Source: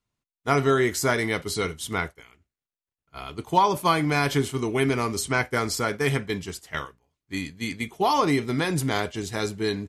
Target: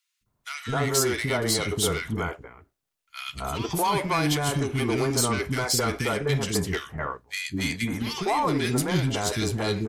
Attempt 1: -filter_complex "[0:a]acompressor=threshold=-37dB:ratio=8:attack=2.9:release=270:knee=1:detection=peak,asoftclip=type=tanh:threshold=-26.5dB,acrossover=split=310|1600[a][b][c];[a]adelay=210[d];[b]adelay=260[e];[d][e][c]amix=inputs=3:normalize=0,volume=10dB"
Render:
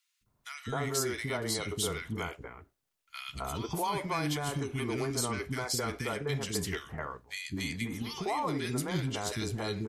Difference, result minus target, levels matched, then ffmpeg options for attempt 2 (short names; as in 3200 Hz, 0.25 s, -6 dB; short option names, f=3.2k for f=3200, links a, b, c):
compressor: peak gain reduction +10 dB
-filter_complex "[0:a]acompressor=threshold=-25.5dB:ratio=8:attack=2.9:release=270:knee=1:detection=peak,asoftclip=type=tanh:threshold=-26.5dB,acrossover=split=310|1600[a][b][c];[a]adelay=210[d];[b]adelay=260[e];[d][e][c]amix=inputs=3:normalize=0,volume=10dB"